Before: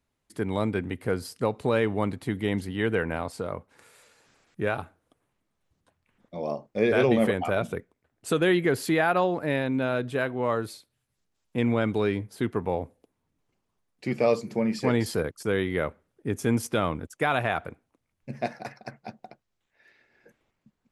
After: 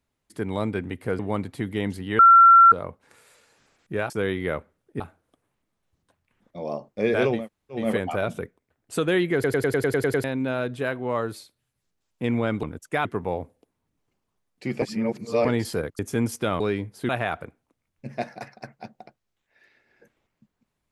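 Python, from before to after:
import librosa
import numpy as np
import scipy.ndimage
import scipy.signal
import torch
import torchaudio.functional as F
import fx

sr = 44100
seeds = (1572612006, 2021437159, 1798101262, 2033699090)

y = fx.edit(x, sr, fx.cut(start_s=1.19, length_s=0.68),
    fx.bleep(start_s=2.87, length_s=0.53, hz=1360.0, db=-8.5),
    fx.insert_room_tone(at_s=7.15, length_s=0.44, crossfade_s=0.24),
    fx.stutter_over(start_s=8.68, slice_s=0.1, count=9),
    fx.swap(start_s=11.97, length_s=0.49, other_s=16.91, other_length_s=0.42),
    fx.reverse_span(start_s=14.23, length_s=0.63),
    fx.move(start_s=15.4, length_s=0.9, to_s=4.78), tone=tone)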